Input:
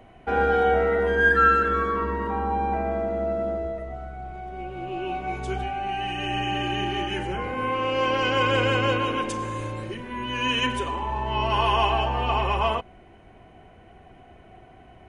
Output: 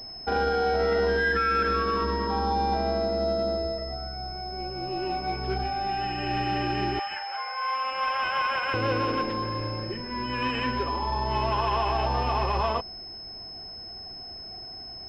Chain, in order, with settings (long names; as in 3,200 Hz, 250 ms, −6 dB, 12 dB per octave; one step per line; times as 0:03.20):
0:06.99–0:08.74: Butterworth high-pass 690 Hz 36 dB per octave
brickwall limiter −16.5 dBFS, peak gain reduction 8.5 dB
switching amplifier with a slow clock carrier 5,200 Hz